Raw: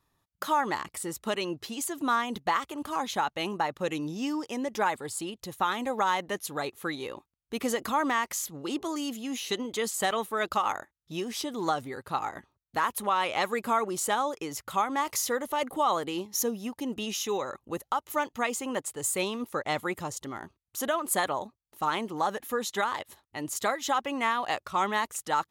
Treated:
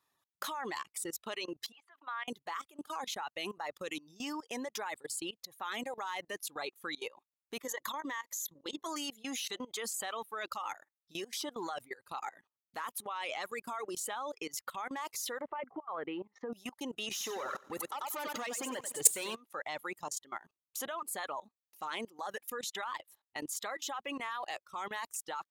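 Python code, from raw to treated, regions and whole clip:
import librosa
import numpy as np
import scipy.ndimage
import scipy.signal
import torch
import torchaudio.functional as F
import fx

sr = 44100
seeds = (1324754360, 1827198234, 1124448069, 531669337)

y = fx.chain(x, sr, fx.highpass(hz=1000.0, slope=12),
    fx.air_absorb(metres=410.0), at=(1.72, 2.28))
y = fx.chain(y, sr, fx.ripple_eq(per_octave=1.1, db=11),
    fx.level_steps(step_db=12), at=(7.62, 8.86))
y = fx.chain(y, sr, fx.lowpass(hz=2000.0, slope=24),
    fx.over_compress(threshold_db=-30.0, ratio=-0.5), at=(15.41, 16.53))
y = fx.chain(y, sr, fx.leveller(passes=3),
    fx.echo_feedback(ms=93, feedback_pct=47, wet_db=-6), at=(17.11, 19.35))
y = fx.dereverb_blind(y, sr, rt60_s=1.1)
y = fx.highpass(y, sr, hz=690.0, slope=6)
y = fx.level_steps(y, sr, step_db=21)
y = y * 10.0 ** (3.5 / 20.0)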